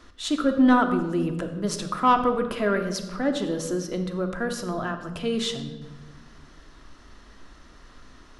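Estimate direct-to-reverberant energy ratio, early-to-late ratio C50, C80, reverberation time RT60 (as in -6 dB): 5.0 dB, 9.0 dB, 10.5 dB, 1.3 s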